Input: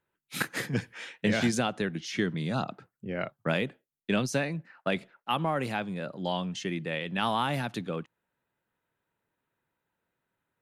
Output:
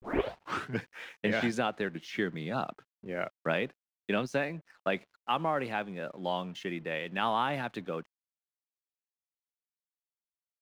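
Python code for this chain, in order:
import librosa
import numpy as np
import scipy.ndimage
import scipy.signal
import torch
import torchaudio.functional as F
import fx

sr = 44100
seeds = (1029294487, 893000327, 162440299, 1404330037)

y = fx.tape_start_head(x, sr, length_s=0.79)
y = fx.bass_treble(y, sr, bass_db=-8, treble_db=-13)
y = np.sign(y) * np.maximum(np.abs(y) - 10.0 ** (-58.0 / 20.0), 0.0)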